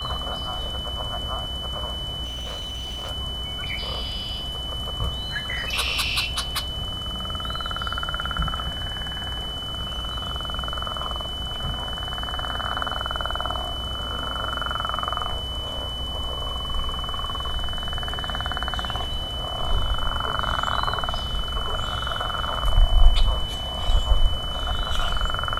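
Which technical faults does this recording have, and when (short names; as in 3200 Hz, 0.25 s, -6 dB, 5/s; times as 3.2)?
tone 3000 Hz -30 dBFS
2.24–3.11 clipped -28 dBFS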